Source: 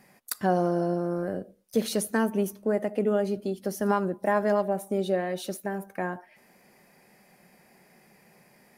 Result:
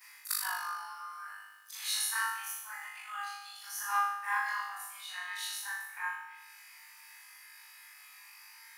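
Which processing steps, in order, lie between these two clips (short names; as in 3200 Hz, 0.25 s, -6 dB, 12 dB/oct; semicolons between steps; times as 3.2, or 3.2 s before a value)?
short-time reversal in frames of 84 ms; steep high-pass 930 Hz 72 dB/oct; companded quantiser 8-bit; flutter echo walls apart 3.4 m, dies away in 0.87 s; mismatched tape noise reduction encoder only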